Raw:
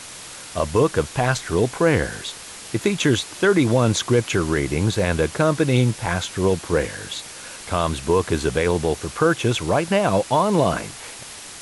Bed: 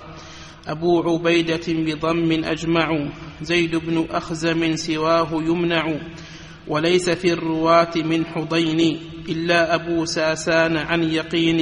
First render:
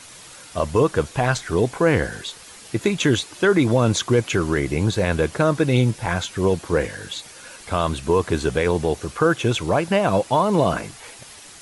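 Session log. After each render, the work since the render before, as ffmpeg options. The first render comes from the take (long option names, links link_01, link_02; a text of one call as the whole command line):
ffmpeg -i in.wav -af "afftdn=noise_reduction=7:noise_floor=-38" out.wav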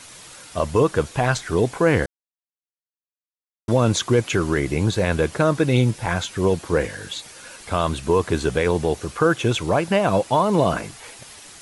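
ffmpeg -i in.wav -filter_complex "[0:a]asplit=3[link_01][link_02][link_03];[link_01]atrim=end=2.06,asetpts=PTS-STARTPTS,afade=type=out:start_time=2.056:duration=0.004:curve=hsin[link_04];[link_02]atrim=start=2.06:end=3.68,asetpts=PTS-STARTPTS,volume=0[link_05];[link_03]atrim=start=3.68,asetpts=PTS-STARTPTS,afade=type=in:duration=0.004:curve=hsin[link_06];[link_04][link_05][link_06]concat=n=3:v=0:a=1" out.wav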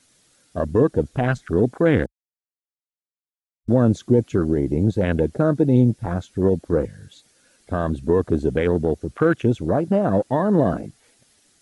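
ffmpeg -i in.wav -af "afwtdn=0.0631,equalizer=frequency=250:width_type=o:width=0.67:gain=6,equalizer=frequency=1000:width_type=o:width=0.67:gain=-8,equalizer=frequency=2500:width_type=o:width=0.67:gain=-4" out.wav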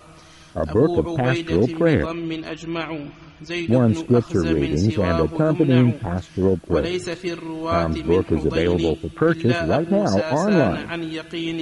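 ffmpeg -i in.wav -i bed.wav -filter_complex "[1:a]volume=-8dB[link_01];[0:a][link_01]amix=inputs=2:normalize=0" out.wav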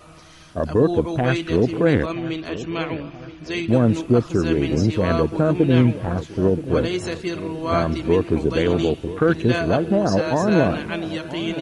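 ffmpeg -i in.wav -filter_complex "[0:a]asplit=2[link_01][link_02];[link_02]adelay=976,lowpass=frequency=1900:poles=1,volume=-14dB,asplit=2[link_03][link_04];[link_04]adelay=976,lowpass=frequency=1900:poles=1,volume=0.52,asplit=2[link_05][link_06];[link_06]adelay=976,lowpass=frequency=1900:poles=1,volume=0.52,asplit=2[link_07][link_08];[link_08]adelay=976,lowpass=frequency=1900:poles=1,volume=0.52,asplit=2[link_09][link_10];[link_10]adelay=976,lowpass=frequency=1900:poles=1,volume=0.52[link_11];[link_01][link_03][link_05][link_07][link_09][link_11]amix=inputs=6:normalize=0" out.wav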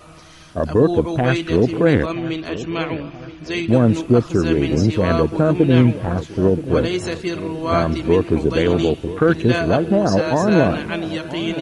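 ffmpeg -i in.wav -af "volume=2.5dB" out.wav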